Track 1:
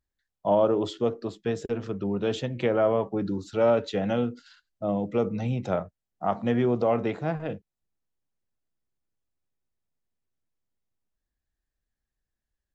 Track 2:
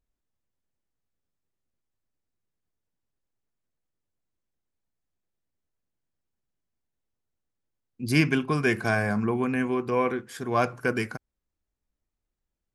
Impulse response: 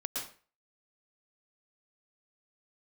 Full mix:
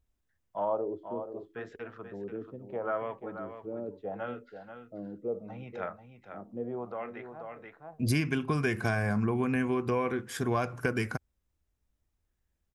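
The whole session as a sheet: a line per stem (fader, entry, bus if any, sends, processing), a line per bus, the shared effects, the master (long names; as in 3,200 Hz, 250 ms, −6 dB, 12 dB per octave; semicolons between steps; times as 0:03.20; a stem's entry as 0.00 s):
−9.5 dB, 0.10 s, no send, echo send −9.5 dB, spectral tilt +4 dB per octave; auto-filter low-pass sine 0.75 Hz 320–1,900 Hz; automatic ducking −18 dB, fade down 1.25 s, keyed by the second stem
+2.5 dB, 0.00 s, no send, no echo send, notch filter 4,400 Hz, Q 15; downward compressor 6 to 1, threshold −29 dBFS, peak gain reduction 13 dB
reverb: not used
echo: single-tap delay 485 ms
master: parametric band 72 Hz +8.5 dB 1.4 octaves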